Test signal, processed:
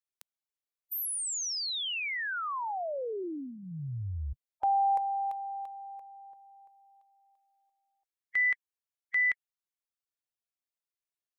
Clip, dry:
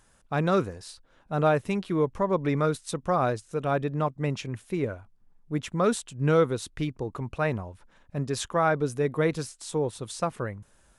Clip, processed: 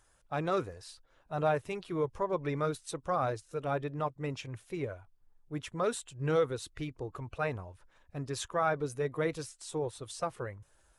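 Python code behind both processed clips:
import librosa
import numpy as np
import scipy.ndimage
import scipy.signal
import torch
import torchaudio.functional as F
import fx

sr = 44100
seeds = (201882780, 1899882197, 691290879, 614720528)

y = fx.spec_quant(x, sr, step_db=15)
y = fx.peak_eq(y, sr, hz=210.0, db=-12.0, octaves=0.61)
y = y * 10.0 ** (-5.0 / 20.0)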